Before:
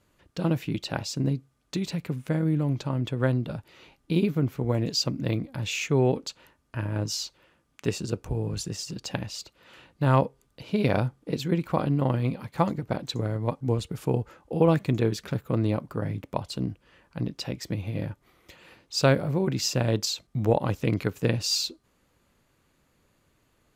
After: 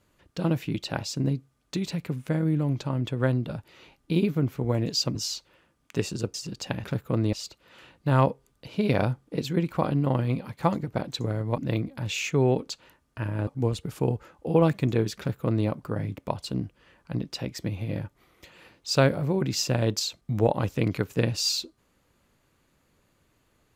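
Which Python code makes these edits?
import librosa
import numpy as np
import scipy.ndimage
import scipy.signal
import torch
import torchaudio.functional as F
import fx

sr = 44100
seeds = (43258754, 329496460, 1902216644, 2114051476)

y = fx.edit(x, sr, fx.move(start_s=5.15, length_s=1.89, to_s=13.53),
    fx.cut(start_s=8.23, length_s=0.55),
    fx.duplicate(start_s=15.24, length_s=0.49, to_s=9.28), tone=tone)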